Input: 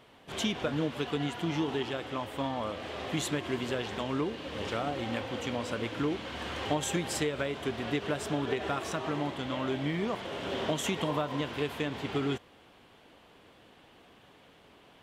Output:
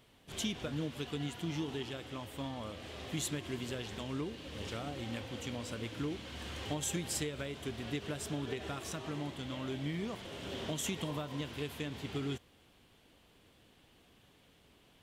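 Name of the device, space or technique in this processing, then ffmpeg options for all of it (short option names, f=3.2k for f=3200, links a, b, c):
smiley-face EQ: -af "lowshelf=f=96:g=8.5,equalizer=f=920:t=o:w=2.5:g=-6,highshelf=f=5.5k:g=8,volume=-5.5dB"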